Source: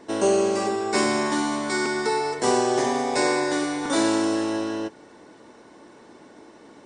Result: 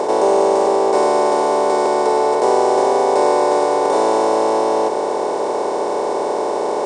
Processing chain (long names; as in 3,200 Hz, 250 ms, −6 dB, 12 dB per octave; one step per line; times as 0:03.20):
compressor on every frequency bin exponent 0.2
flat-topped bell 650 Hz +14 dB
level −9.5 dB